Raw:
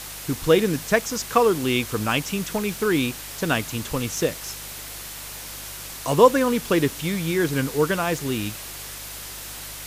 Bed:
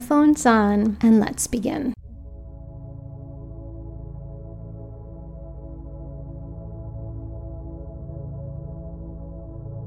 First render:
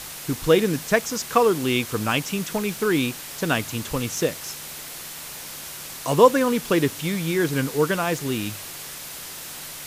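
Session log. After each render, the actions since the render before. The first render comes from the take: de-hum 50 Hz, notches 2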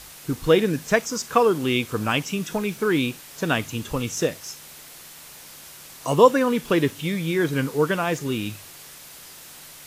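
noise print and reduce 7 dB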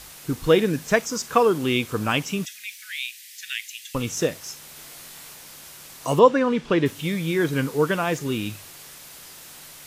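2.45–3.95 elliptic high-pass 1900 Hz, stop band 50 dB; 4.74–5.34 flutter echo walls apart 3.6 m, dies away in 0.22 s; 6.19–6.86 air absorption 110 m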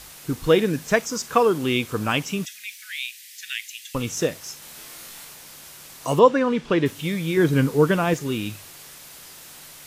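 4.59–5.25 flutter echo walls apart 5.2 m, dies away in 0.35 s; 7.37–8.14 low shelf 410 Hz +7 dB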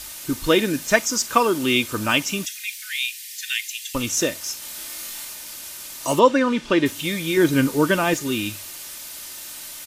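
high shelf 2300 Hz +7.5 dB; comb 3.3 ms, depth 46%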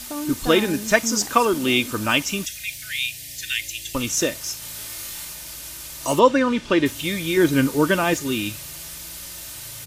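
add bed -13.5 dB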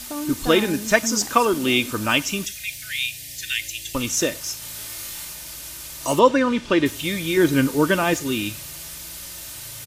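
echo 99 ms -24 dB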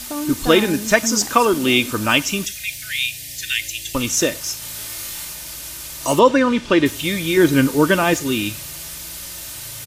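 gain +3.5 dB; limiter -1 dBFS, peak gain reduction 2.5 dB

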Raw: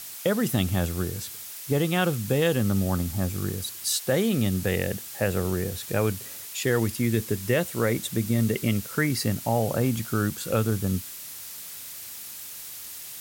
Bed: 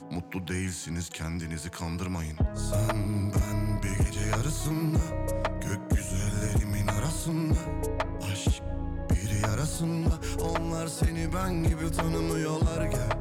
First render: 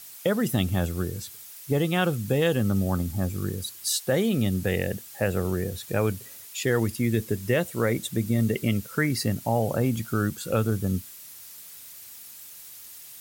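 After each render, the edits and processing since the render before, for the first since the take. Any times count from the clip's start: denoiser 7 dB, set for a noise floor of -40 dBFS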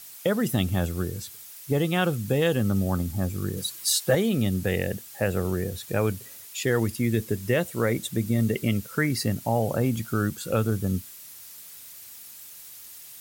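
3.56–4.15 comb 6.2 ms, depth 98%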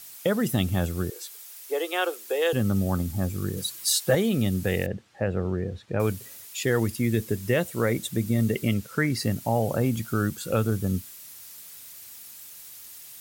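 1.1–2.53 steep high-pass 360 Hz 48 dB/oct; 4.86–6 tape spacing loss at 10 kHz 28 dB; 8.74–9.23 high shelf 9900 Hz -7 dB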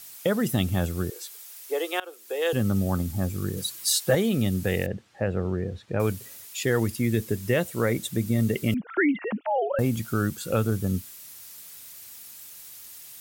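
2–2.55 fade in, from -21.5 dB; 8.74–9.79 sine-wave speech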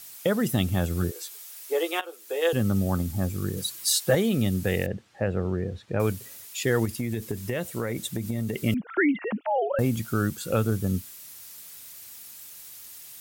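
0.89–2.49 doubler 12 ms -6 dB; 6.85–8.63 compressor, threshold -24 dBFS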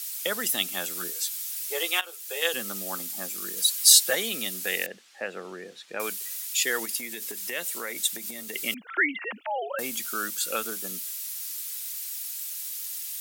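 Bessel high-pass 320 Hz, order 6; tilt shelf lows -9.5 dB, about 1200 Hz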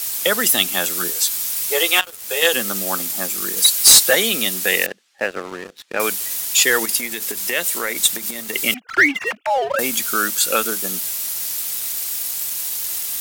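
sample leveller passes 3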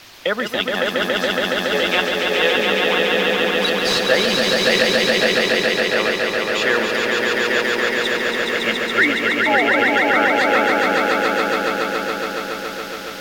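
air absorption 260 m; swelling echo 0.14 s, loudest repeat 5, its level -3 dB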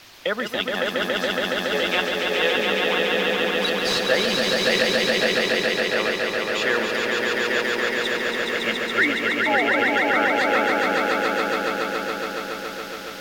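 gain -4 dB

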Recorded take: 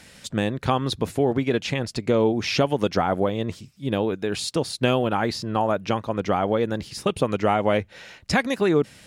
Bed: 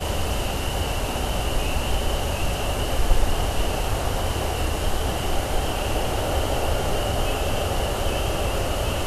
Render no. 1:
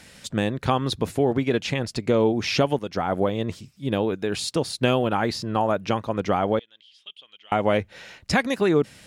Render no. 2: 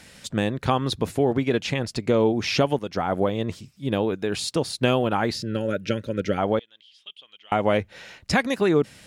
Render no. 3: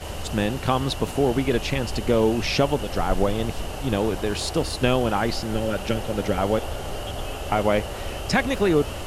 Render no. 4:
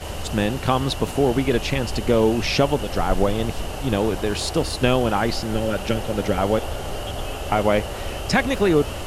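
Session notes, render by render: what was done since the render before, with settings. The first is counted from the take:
2.79–3.2 fade in, from -12.5 dB; 6.59–7.52 band-pass 3200 Hz, Q 13
5.35–6.38 spectral gain 620–1300 Hz -21 dB
add bed -7.5 dB
gain +2 dB

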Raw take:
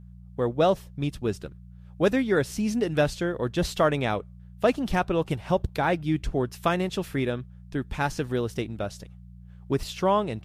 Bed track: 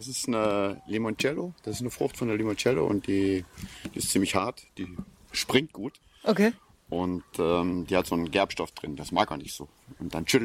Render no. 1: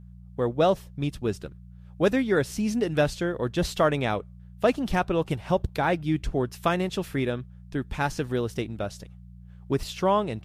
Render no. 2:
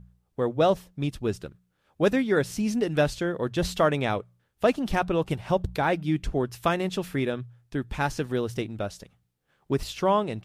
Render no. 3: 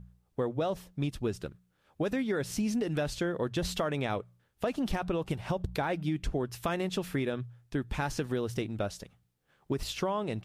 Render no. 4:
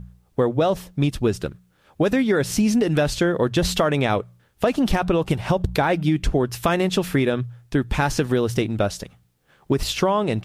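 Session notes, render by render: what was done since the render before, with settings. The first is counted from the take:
nothing audible
de-hum 60 Hz, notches 3
limiter -17 dBFS, peak gain reduction 7.5 dB; compressor, threshold -27 dBFS, peak gain reduction 6 dB
gain +11.5 dB

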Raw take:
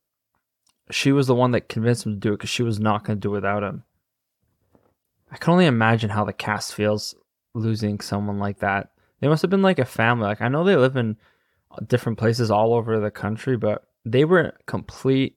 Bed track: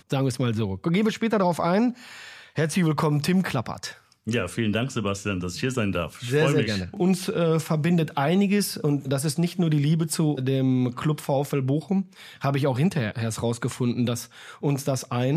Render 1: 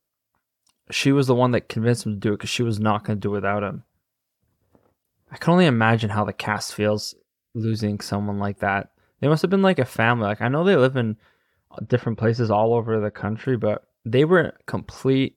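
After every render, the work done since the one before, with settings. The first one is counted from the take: 7.08–7.73 Chebyshev band-stop 490–1600 Hz; 11.79–13.45 air absorption 170 m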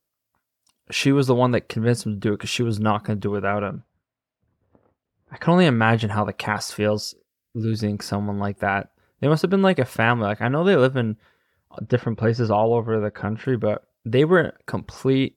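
3.63–5.76 low-pass opened by the level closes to 2300 Hz, open at -15 dBFS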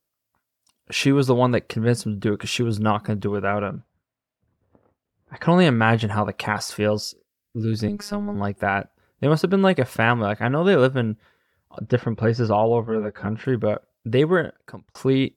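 7.88–8.35 robotiser 205 Hz; 12.85–13.28 ensemble effect; 14.13–14.95 fade out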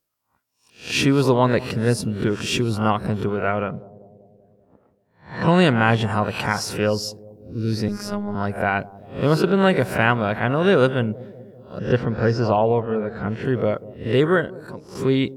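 spectral swells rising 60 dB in 0.37 s; analogue delay 0.192 s, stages 1024, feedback 63%, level -19 dB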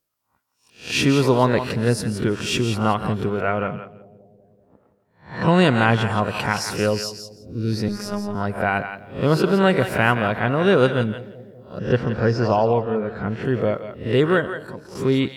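thinning echo 0.169 s, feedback 15%, high-pass 840 Hz, level -8 dB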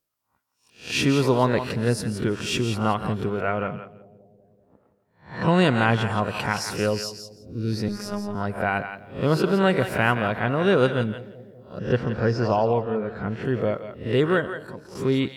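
gain -3 dB

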